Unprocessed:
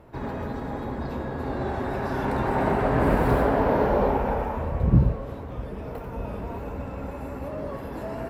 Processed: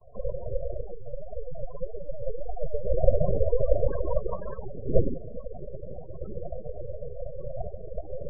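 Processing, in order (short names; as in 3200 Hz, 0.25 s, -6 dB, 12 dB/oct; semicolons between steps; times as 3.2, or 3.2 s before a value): vowel filter u; noise vocoder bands 16; tilt -4.5 dB/oct; full-wave rectifier; 0.82–2.85 flange 1.8 Hz, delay 4 ms, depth 5 ms, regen +13%; spectral gate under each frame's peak -20 dB strong; gain +7 dB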